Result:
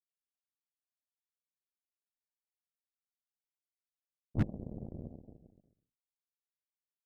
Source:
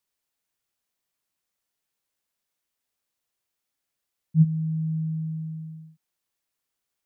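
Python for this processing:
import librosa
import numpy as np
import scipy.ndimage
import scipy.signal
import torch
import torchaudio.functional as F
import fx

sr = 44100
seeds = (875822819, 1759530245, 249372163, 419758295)

y = fx.comb_fb(x, sr, f0_hz=140.0, decay_s=0.2, harmonics='all', damping=0.0, mix_pct=60)
y = fx.whisperise(y, sr, seeds[0])
y = fx.cheby_harmonics(y, sr, harmonics=(7, 8), levels_db=(-17, -36), full_scale_db=-16.0)
y = y * 10.0 ** (-5.5 / 20.0)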